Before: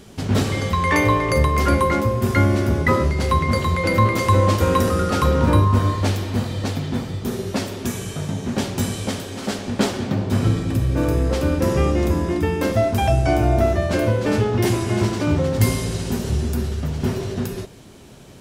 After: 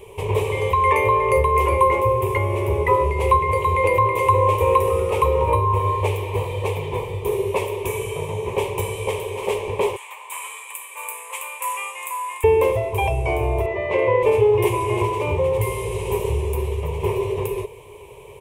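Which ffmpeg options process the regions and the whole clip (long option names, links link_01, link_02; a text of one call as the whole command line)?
ffmpeg -i in.wav -filter_complex "[0:a]asettb=1/sr,asplit=3[link_01][link_02][link_03];[link_01]atrim=end=9.964[link_04];[link_02]atrim=start=9.96:end=12.44,asetpts=PTS-STARTPTS,afade=type=in:duration=0.004:curve=qsin,afade=type=out:start_time=2.476:duration=0.004:curve=qsin,highpass=frequency=1100:width=0.5412,highpass=frequency=1100:width=1.3066,highshelf=frequency=6400:width_type=q:width=3:gain=6[link_05];[link_03]atrim=start=12.436[link_06];[link_04][link_05]acrossfade=duration=0.004:curve1=hsin:curve2=qsin[link_07];[link_07][link_06]acrossfade=duration=0.004:curve1=qsin:curve2=hsin,asettb=1/sr,asplit=3[link_08][link_09][link_10];[link_08]atrim=end=13.664[link_11];[link_09]atrim=start=13.66:end=14.23,asetpts=PTS-STARTPTS,afade=type=in:duration=0.004:curve=qsin,afade=type=out:start_time=0.566:duration=0.004:curve=qsin,aeval=exprs='val(0)+0.0447*sin(2*PI*2000*n/s)':channel_layout=same,highpass=150,lowpass=3900[link_12];[link_10]atrim=start=14.226[link_13];[link_11][link_12]acrossfade=duration=0.004:curve1=hsin:curve2=qsin[link_14];[link_14][link_13]acrossfade=duration=0.004:curve1=qsin:curve2=hsin,alimiter=limit=-11.5dB:level=0:latency=1:release=486,firequalizer=gain_entry='entry(100,0);entry(250,-24);entry(420,13);entry(700,-4);entry(1000,14);entry(1400,-21);entry(2300,9);entry(4500,-17);entry(9300,2)':delay=0.05:min_phase=1" out.wav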